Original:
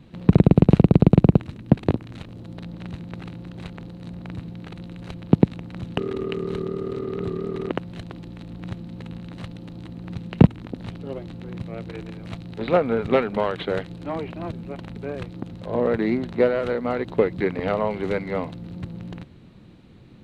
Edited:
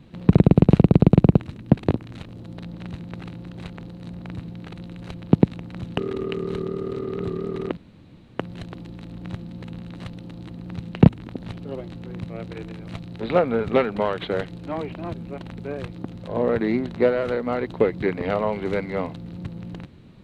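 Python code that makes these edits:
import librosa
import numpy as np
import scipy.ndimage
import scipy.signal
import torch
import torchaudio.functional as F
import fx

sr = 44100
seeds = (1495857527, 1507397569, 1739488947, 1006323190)

y = fx.edit(x, sr, fx.insert_room_tone(at_s=7.77, length_s=0.62), tone=tone)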